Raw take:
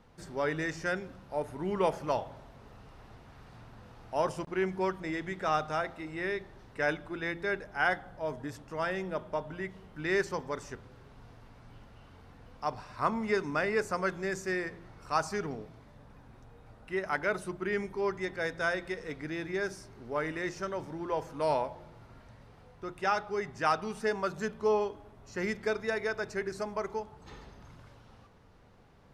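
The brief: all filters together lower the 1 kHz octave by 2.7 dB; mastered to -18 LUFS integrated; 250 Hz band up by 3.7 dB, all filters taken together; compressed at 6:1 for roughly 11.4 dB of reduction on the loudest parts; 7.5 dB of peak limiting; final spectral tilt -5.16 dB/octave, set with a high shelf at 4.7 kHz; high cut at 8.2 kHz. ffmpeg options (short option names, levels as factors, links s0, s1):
-af "lowpass=8200,equalizer=f=250:t=o:g=6,equalizer=f=1000:t=o:g=-4.5,highshelf=f=4700:g=8.5,acompressor=threshold=0.0178:ratio=6,volume=15.8,alimiter=limit=0.473:level=0:latency=1"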